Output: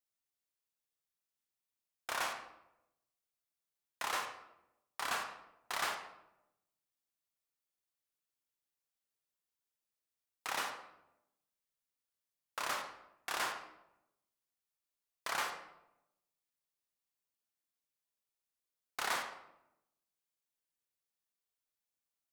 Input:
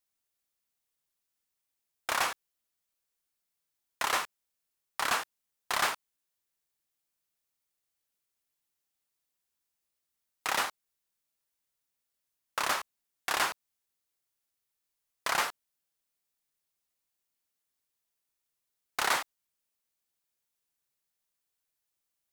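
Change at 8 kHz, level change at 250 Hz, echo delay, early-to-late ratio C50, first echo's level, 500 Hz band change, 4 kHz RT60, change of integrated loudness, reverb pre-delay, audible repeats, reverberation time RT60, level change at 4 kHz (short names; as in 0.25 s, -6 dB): -8.0 dB, -7.0 dB, none, 6.5 dB, none, -6.5 dB, 0.55 s, -8.0 dB, 20 ms, none, 0.85 s, -7.5 dB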